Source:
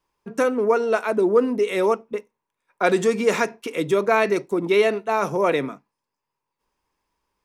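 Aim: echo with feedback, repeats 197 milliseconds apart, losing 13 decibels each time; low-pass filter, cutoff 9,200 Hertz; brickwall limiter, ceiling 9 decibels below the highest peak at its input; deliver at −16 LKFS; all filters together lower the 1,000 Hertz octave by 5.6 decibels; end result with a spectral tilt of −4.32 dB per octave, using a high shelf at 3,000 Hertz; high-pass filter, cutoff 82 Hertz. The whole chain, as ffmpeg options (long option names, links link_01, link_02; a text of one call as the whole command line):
ffmpeg -i in.wav -af "highpass=82,lowpass=9200,equalizer=frequency=1000:width_type=o:gain=-9,highshelf=frequency=3000:gain=7.5,alimiter=limit=-14dB:level=0:latency=1,aecho=1:1:197|394|591:0.224|0.0493|0.0108,volume=8.5dB" out.wav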